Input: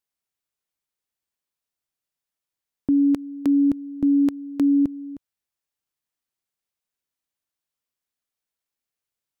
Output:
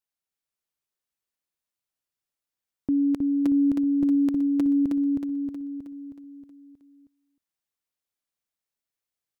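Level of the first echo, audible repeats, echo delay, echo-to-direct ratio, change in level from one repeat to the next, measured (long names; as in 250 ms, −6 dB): −3.0 dB, 6, 316 ms, −1.5 dB, −5.5 dB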